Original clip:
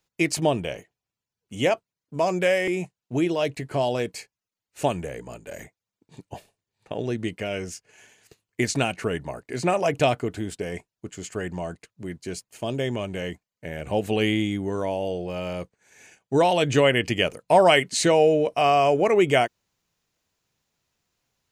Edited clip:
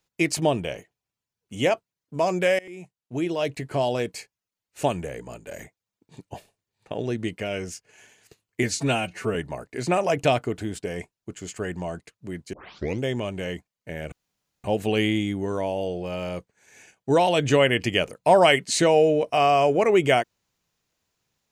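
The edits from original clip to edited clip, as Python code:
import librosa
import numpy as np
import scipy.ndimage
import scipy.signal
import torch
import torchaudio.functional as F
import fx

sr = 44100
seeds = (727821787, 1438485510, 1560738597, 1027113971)

y = fx.edit(x, sr, fx.fade_in_from(start_s=2.59, length_s=0.98, floor_db=-23.5),
    fx.stretch_span(start_s=8.63, length_s=0.48, factor=1.5),
    fx.tape_start(start_s=12.29, length_s=0.5),
    fx.insert_room_tone(at_s=13.88, length_s=0.52), tone=tone)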